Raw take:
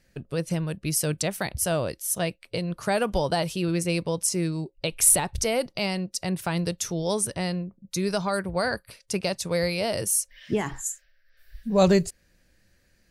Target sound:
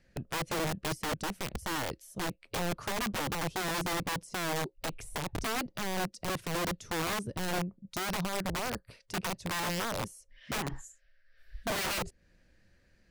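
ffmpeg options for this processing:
-filter_complex "[0:a]acrossover=split=490[a][b];[b]acompressor=threshold=-40dB:ratio=6[c];[a][c]amix=inputs=2:normalize=0,aemphasis=mode=reproduction:type=50fm,aeval=exprs='(mod(20*val(0)+1,2)-1)/20':c=same,volume=-1.5dB"

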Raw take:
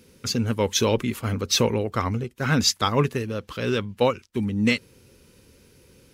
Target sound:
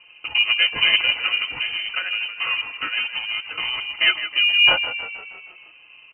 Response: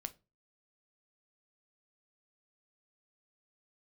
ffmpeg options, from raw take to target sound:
-filter_complex "[0:a]lowshelf=f=110:g=10,aecho=1:1:5.2:0.93,asettb=1/sr,asplit=3[a][b][c];[a]atrim=end=1.374[d];[b]atrim=start=1.37:end=3.96,asetpts=PTS-STARTPTS,afade=t=in:d=0.004:c=qsin,afade=t=out:st=2.586:d=0.004:c=qsin,acompressor=threshold=-23dB:ratio=6[e];[c]atrim=start=3.956[f];[d][e]acrossfade=d=0.004:c1=hsin:c2=qsin[g];[g][f]acrossfade=d=0.004:c1=qsin:c2=hsin,aeval=exprs='val(0)*sin(2*PI*460*n/s)':c=same,asuperstop=centerf=830:order=4:qfactor=6.4,asplit=7[h][i][j][k][l][m][n];[i]adelay=158,afreqshift=35,volume=-11dB[o];[j]adelay=316,afreqshift=70,volume=-16dB[p];[k]adelay=474,afreqshift=105,volume=-21.1dB[q];[l]adelay=632,afreqshift=140,volume=-26.1dB[r];[m]adelay=790,afreqshift=175,volume=-31.1dB[s];[n]adelay=948,afreqshift=210,volume=-36.2dB[t];[h][o][p][q][r][s][t]amix=inputs=7:normalize=0,lowpass=f=2.6k:t=q:w=0.5098,lowpass=f=2.6k:t=q:w=0.6013,lowpass=f=2.6k:t=q:w=0.9,lowpass=f=2.6k:t=q:w=2.563,afreqshift=-3100,volume=4dB"

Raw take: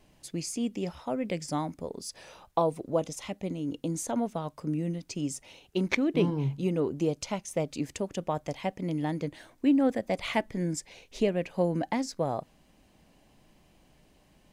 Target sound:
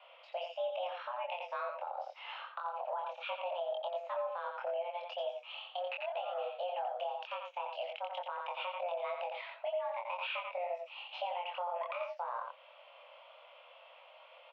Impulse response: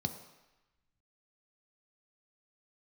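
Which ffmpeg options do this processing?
-filter_complex "[0:a]aexciter=amount=3.7:drive=5.3:freq=2.2k,acompressor=threshold=-33dB:ratio=6,highpass=f=190:t=q:w=0.5412,highpass=f=190:t=q:w=1.307,lowpass=f=2.5k:t=q:w=0.5176,lowpass=f=2.5k:t=q:w=0.7071,lowpass=f=2.5k:t=q:w=1.932,afreqshift=350,asplit=2[a][b];[b]adelay=24,volume=-3dB[c];[a][c]amix=inputs=2:normalize=0,asplit=2[d][e];[e]aecho=0:1:87:0.473[f];[d][f]amix=inputs=2:normalize=0,alimiter=level_in=9dB:limit=-24dB:level=0:latency=1:release=255,volume=-9dB,volume=4dB"

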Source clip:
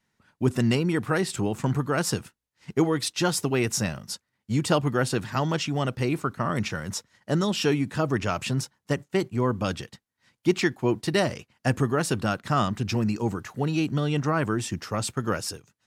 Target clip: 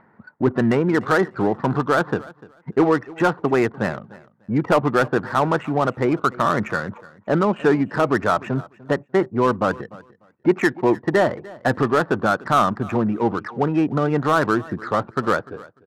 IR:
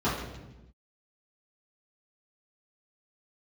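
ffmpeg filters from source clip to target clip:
-filter_complex "[0:a]lowpass=f=1.8k:w=0.5412,lowpass=f=1.8k:w=1.3066,afftdn=nr=21:nf=-47,highpass=f=520:p=1,asplit=2[a][b];[b]alimiter=limit=-22dB:level=0:latency=1:release=12,volume=-1.5dB[c];[a][c]amix=inputs=2:normalize=0,acompressor=mode=upward:threshold=-32dB:ratio=2.5,volume=15.5dB,asoftclip=hard,volume=-15.5dB,adynamicsmooth=sensitivity=6.5:basefreq=1.2k,aecho=1:1:297|594:0.0891|0.0169,volume=7.5dB"

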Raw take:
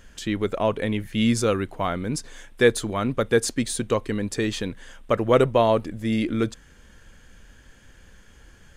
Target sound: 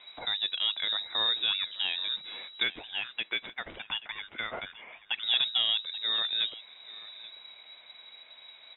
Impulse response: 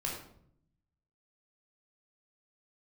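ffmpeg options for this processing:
-filter_complex "[0:a]asettb=1/sr,asplit=3[a][b][c];[a]atrim=end=2.634[d];[b]atrim=start=2.63:end=5.23,asetpts=PTS-STARTPTS,afade=t=in:d=0.004:c=qsin,afade=t=out:st=2.596:d=0.004:c=qsin,highpass=800[e];[c]atrim=start=5.226[f];[d][e]acrossfade=d=0.004:c1=hsin:c2=qsin[g];[g][f]acrossfade=d=0.004:c1=qsin:c2=hsin,acompressor=threshold=-32dB:ratio=1.5,crystalizer=i=2.5:c=0,aeval=exprs='0.398*(cos(1*acos(clip(val(0)/0.398,-1,1)))-cos(1*PI/2))+0.112*(cos(3*acos(clip(val(0)/0.398,-1,1)))-cos(3*PI/2))+0.0501*(cos(5*acos(clip(val(0)/0.398,-1,1)))-cos(5*PI/2))':c=same,aecho=1:1:832:0.126,lowpass=f=3.3k:t=q:w=0.5098,lowpass=f=3.3k:t=q:w=0.6013,lowpass=f=3.3k:t=q:w=0.9,lowpass=f=3.3k:t=q:w=2.563,afreqshift=-3900"

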